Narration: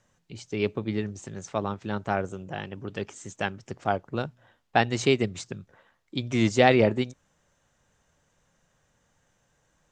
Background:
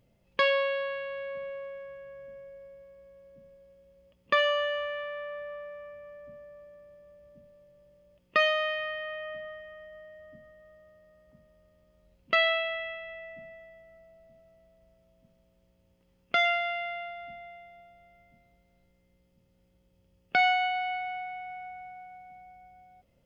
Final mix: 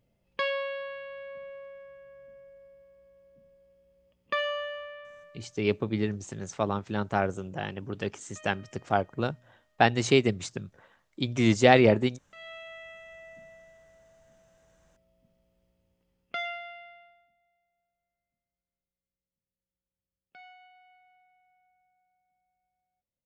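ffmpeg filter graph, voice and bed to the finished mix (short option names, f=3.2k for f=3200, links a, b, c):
-filter_complex "[0:a]adelay=5050,volume=0.5dB[a];[1:a]volume=19.5dB,afade=t=out:st=4.55:d=0.99:silence=0.0668344,afade=t=in:st=12.35:d=0.97:silence=0.0595662,afade=t=out:st=15.62:d=1.68:silence=0.0630957[b];[a][b]amix=inputs=2:normalize=0"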